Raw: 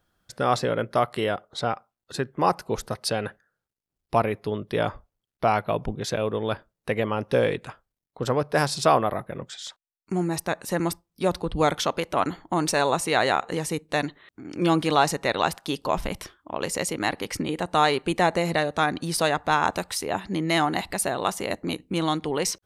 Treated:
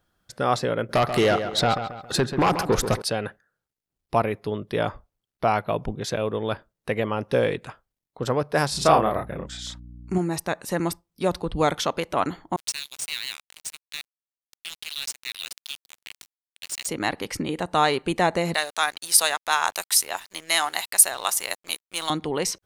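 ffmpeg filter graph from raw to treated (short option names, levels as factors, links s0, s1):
-filter_complex "[0:a]asettb=1/sr,asplit=3[s0][s1][s2];[s0]atrim=end=0.894[s3];[s1]atrim=start=0.89:end=3.02,asetpts=PTS-STARTPTS,afade=t=in:d=0.004:c=qsin,afade=t=out:st=2.126:d=0.004:c=qsin,acompressor=threshold=0.0794:ratio=4:attack=3.2:release=140:knee=1:detection=peak,aeval=exprs='0.188*sin(PI/2*2.24*val(0)/0.188)':c=same,asplit=2[s4][s5];[s5]adelay=136,lowpass=f=3900:p=1,volume=0.355,asplit=2[s6][s7];[s7]adelay=136,lowpass=f=3900:p=1,volume=0.41,asplit=2[s8][s9];[s9]adelay=136,lowpass=f=3900:p=1,volume=0.41,asplit=2[s10][s11];[s11]adelay=136,lowpass=f=3900:p=1,volume=0.41,asplit=2[s12][s13];[s13]adelay=136,lowpass=f=3900:p=1,volume=0.41[s14];[s4][s6][s8][s10][s12][s14]amix=inputs=6:normalize=0,atrim=end_sample=93933[s15];[s2]atrim=start=3.016[s16];[s3][s15]acrossfade=d=0.004:c1=hsin:c2=qsin[s17];[s17][s16]acrossfade=d=0.004:c1=qsin:c2=hsin,asettb=1/sr,asplit=3[s18][s19][s20];[s18]atrim=end=8.714[s21];[s19]atrim=start=8.71:end=10.18,asetpts=PTS-STARTPTS,afade=t=in:d=0.004:c=qsin,afade=t=out:st=1.466:d=0.004:c=qsin,aeval=exprs='val(0)+0.00501*(sin(2*PI*60*n/s)+sin(2*PI*2*60*n/s)/2+sin(2*PI*3*60*n/s)/3+sin(2*PI*4*60*n/s)/4+sin(2*PI*5*60*n/s)/5)':c=same,asplit=2[s22][s23];[s23]adelay=33,volume=0.794[s24];[s22][s24]amix=inputs=2:normalize=0,atrim=end_sample=64827[s25];[s20]atrim=start=10.176[s26];[s21][s25]acrossfade=d=0.004:c1=hsin:c2=qsin[s27];[s27][s26]acrossfade=d=0.004:c1=qsin:c2=hsin,asettb=1/sr,asplit=3[s28][s29][s30];[s28]atrim=end=12.564[s31];[s29]atrim=start=12.56:end=16.87,asetpts=PTS-STARTPTS,afade=t=in:d=0.004:c=qsin,afade=t=out:st=4.306:d=0.004:c=qsin,asuperpass=centerf=5100:order=8:qfactor=0.67,acrusher=bits=4:mix=0:aa=0.5[s32];[s30]atrim=start=16.866[s33];[s31][s32]acrossfade=d=0.004:c1=hsin:c2=qsin[s34];[s34][s33]acrossfade=d=0.004:c1=qsin:c2=hsin,asettb=1/sr,asplit=3[s35][s36][s37];[s35]atrim=end=18.544[s38];[s36]atrim=start=18.54:end=22.1,asetpts=PTS-STARTPTS,afade=t=in:d=0.004:c=qsin,afade=t=out:st=3.556:d=0.004:c=qsin,highpass=770,aemphasis=mode=production:type=75kf,aeval=exprs='sgn(val(0))*max(abs(val(0))-0.0075,0)':c=same[s39];[s37]atrim=start=22.096[s40];[s38][s39]acrossfade=d=0.004:c1=hsin:c2=qsin[s41];[s41][s40]acrossfade=d=0.004:c1=qsin:c2=hsin"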